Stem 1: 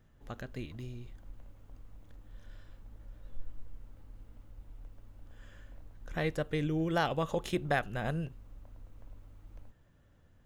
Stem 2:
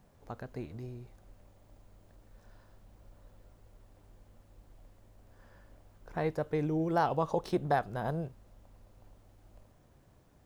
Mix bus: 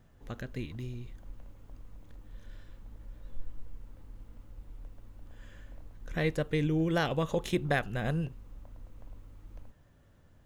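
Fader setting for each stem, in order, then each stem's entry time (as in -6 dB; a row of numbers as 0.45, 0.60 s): +2.0, -7.0 dB; 0.00, 0.00 s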